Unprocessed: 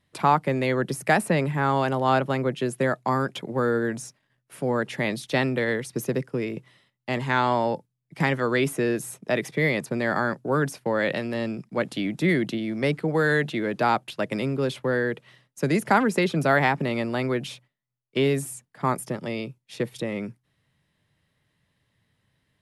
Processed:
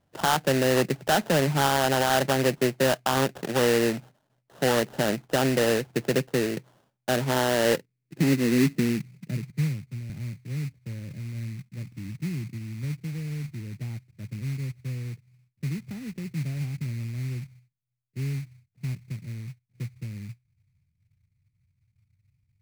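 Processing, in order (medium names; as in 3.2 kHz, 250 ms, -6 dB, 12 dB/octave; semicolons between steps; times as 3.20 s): low-pass sweep 800 Hz -> 100 Hz, 6.98–9.86 s; peak limiter -14.5 dBFS, peak gain reduction 11 dB; sample-rate reducer 2.3 kHz, jitter 20%; 9.50–10.10 s: three bands expanded up and down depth 70%; trim +1 dB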